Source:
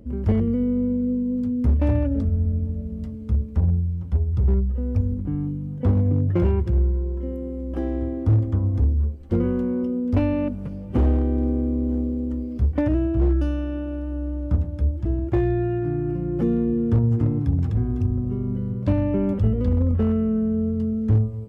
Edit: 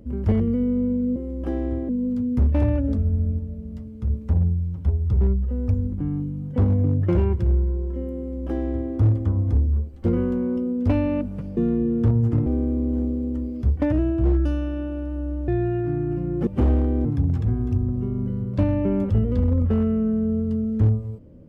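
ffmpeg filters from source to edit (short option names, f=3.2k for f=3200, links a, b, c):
-filter_complex "[0:a]asplit=10[a][b][c][d][e][f][g][h][i][j];[a]atrim=end=1.162[k];[b]atrim=start=7.458:end=8.192[l];[c]atrim=start=1.158:end=2.662[m];[d]atrim=start=2.658:end=3.372,asetpts=PTS-STARTPTS,volume=-3.5dB[n];[e]atrim=start=3.368:end=10.842[o];[f]atrim=start=16.448:end=17.342[p];[g]atrim=start=11.418:end=14.442[q];[h]atrim=start=15.458:end=16.452[r];[i]atrim=start=10.838:end=11.422[s];[j]atrim=start=17.338[t];[k][l]acrossfade=d=0.004:c1=hsin:c2=hsin[u];[u][m]acrossfade=d=0.004:c1=hsin:c2=hsin[v];[v][n]acrossfade=d=0.004:c1=hsin:c2=hsin[w];[w][o]acrossfade=d=0.004:c1=hsin:c2=hsin[x];[x][p]acrossfade=d=0.004:c1=hsin:c2=hsin[y];[y][q]acrossfade=d=0.004:c1=hsin:c2=hsin[z];[z][r]acrossfade=d=0.004:c1=hsin:c2=hsin[aa];[aa][s]acrossfade=d=0.004:c1=hsin:c2=hsin[ab];[ab][t]acrossfade=d=0.004:c1=hsin:c2=hsin"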